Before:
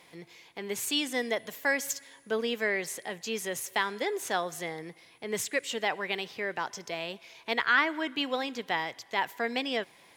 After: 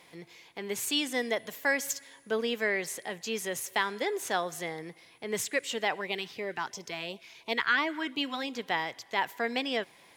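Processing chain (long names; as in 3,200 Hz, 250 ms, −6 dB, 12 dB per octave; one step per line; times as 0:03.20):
0:06.01–0:08.54: auto-filter notch sine 2.9 Hz 490–1,700 Hz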